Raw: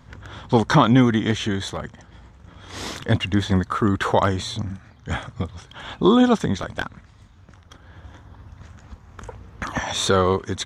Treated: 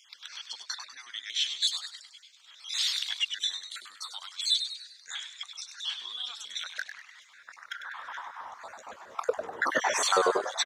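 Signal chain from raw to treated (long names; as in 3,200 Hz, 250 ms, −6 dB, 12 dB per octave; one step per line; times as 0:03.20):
time-frequency cells dropped at random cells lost 48%
drawn EQ curve 360 Hz 0 dB, 940 Hz +6 dB, 4,000 Hz +2 dB
downward compressor 6 to 1, threshold −29 dBFS, peak gain reduction 19 dB
high-pass filter sweep 3,800 Hz → 420 Hz, 0:06.26–0:09.45
echo with shifted repeats 99 ms, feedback 47%, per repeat +140 Hz, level −8.5 dB
level +4 dB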